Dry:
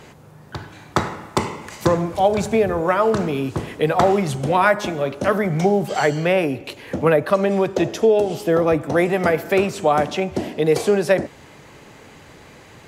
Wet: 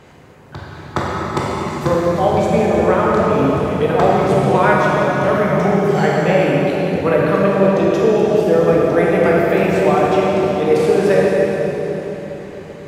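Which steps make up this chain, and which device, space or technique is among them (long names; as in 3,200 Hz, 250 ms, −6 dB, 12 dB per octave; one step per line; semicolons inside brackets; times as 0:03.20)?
swimming-pool hall (convolution reverb RT60 4.1 s, pre-delay 17 ms, DRR −5 dB; high-shelf EQ 3,600 Hz −7 dB)
level −1.5 dB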